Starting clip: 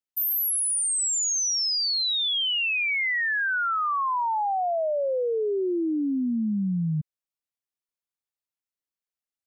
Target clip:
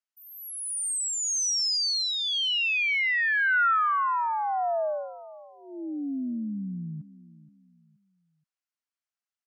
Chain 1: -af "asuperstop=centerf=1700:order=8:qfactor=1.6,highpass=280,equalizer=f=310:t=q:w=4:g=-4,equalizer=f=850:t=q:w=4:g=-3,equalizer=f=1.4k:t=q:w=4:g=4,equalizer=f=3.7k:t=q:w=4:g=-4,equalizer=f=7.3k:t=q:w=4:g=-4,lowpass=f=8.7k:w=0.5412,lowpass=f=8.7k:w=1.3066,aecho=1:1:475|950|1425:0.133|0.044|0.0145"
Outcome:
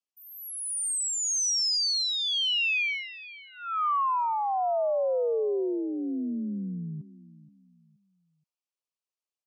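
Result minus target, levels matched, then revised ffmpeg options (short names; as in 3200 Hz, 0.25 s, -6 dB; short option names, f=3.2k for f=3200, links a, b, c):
500 Hz band +7.5 dB
-af "asuperstop=centerf=440:order=8:qfactor=1.6,highpass=280,equalizer=f=310:t=q:w=4:g=-4,equalizer=f=850:t=q:w=4:g=-3,equalizer=f=1.4k:t=q:w=4:g=4,equalizer=f=3.7k:t=q:w=4:g=-4,equalizer=f=7.3k:t=q:w=4:g=-4,lowpass=f=8.7k:w=0.5412,lowpass=f=8.7k:w=1.3066,aecho=1:1:475|950|1425:0.133|0.044|0.0145"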